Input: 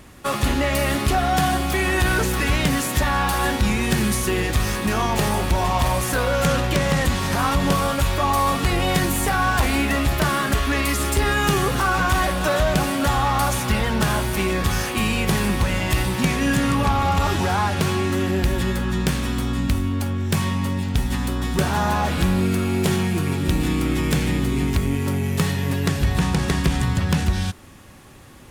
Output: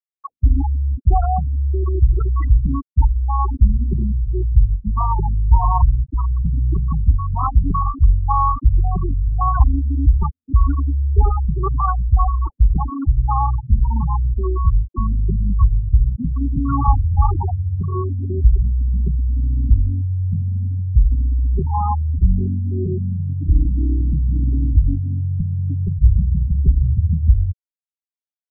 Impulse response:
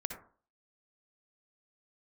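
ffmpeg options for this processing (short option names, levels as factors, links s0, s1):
-filter_complex "[0:a]equalizer=f=170:w=0.83:g=-13,aecho=1:1:0.9:0.93,acrossover=split=110|1000[s0][s1][s2];[s2]acompressor=threshold=0.0251:ratio=8[s3];[s0][s1][s3]amix=inputs=3:normalize=0,lowshelf=f=66:g=5,afftfilt=real='re*gte(hypot(re,im),0.282)':imag='im*gte(hypot(re,im),0.282)':win_size=1024:overlap=0.75,afftfilt=real='re*lt(b*sr/1024,240*pow(7000/240,0.5+0.5*sin(2*PI*1.8*pts/sr)))':imag='im*lt(b*sr/1024,240*pow(7000/240,0.5+0.5*sin(2*PI*1.8*pts/sr)))':win_size=1024:overlap=0.75,volume=1.68"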